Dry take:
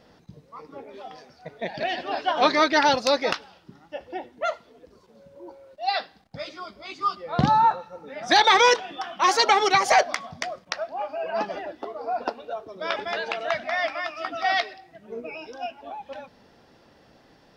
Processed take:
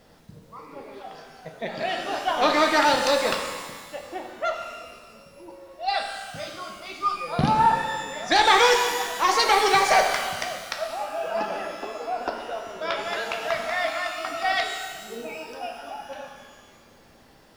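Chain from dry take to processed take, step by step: single-diode clipper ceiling -9.5 dBFS; added noise pink -63 dBFS; pitch-shifted reverb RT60 1.5 s, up +12 st, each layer -8 dB, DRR 3 dB; trim -1 dB

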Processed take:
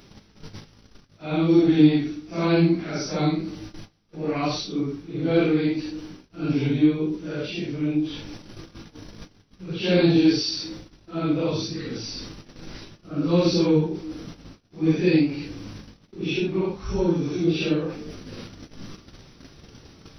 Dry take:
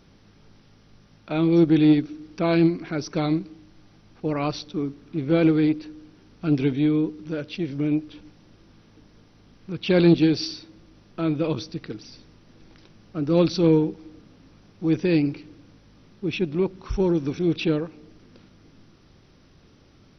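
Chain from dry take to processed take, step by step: phase randomisation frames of 200 ms; treble shelf 4.7 kHz +8 dB; gate -50 dBFS, range -21 dB; reverse; upward compressor, threshold -25 dBFS; reverse

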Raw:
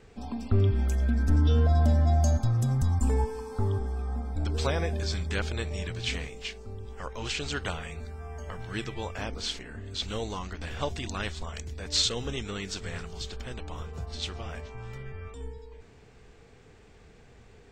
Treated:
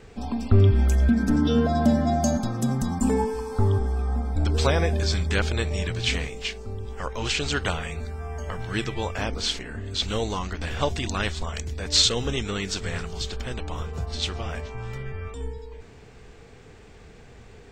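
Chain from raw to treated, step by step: 1.09–3.34 s: resonant low shelf 140 Hz -9.5 dB, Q 3; trim +6.5 dB

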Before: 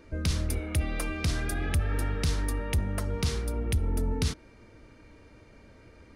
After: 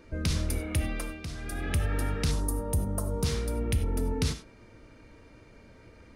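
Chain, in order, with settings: 0.82–1.75 s: dip -10 dB, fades 0.38 s; 2.31–3.24 s: FFT filter 1.1 kHz 0 dB, 2.2 kHz -21 dB, 9.3 kHz +5 dB; gated-style reverb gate 120 ms flat, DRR 8.5 dB

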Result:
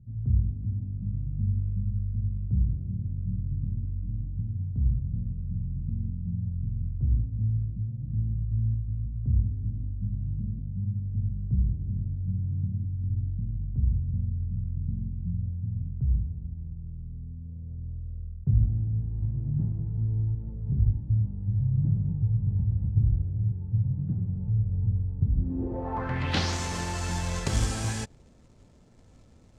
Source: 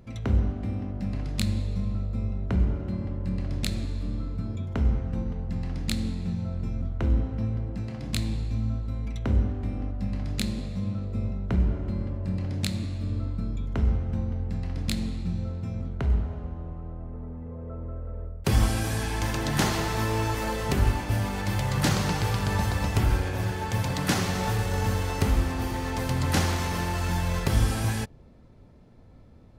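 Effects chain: short-mantissa float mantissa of 2-bit; low-pass sweep 130 Hz -> 7.4 kHz, 25.32–26.57 s; trim -3.5 dB

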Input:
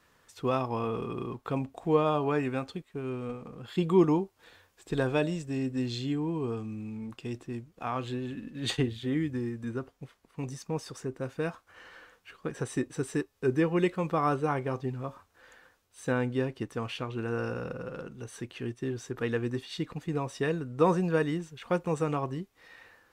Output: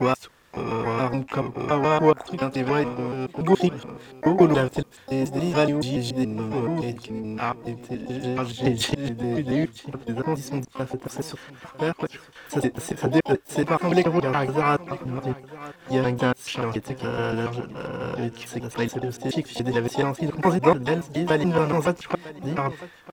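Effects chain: slices played last to first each 142 ms, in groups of 4; feedback delay 951 ms, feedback 17%, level -18.5 dB; harmony voices +7 st -16 dB, +12 st -9 dB; trim +6.5 dB

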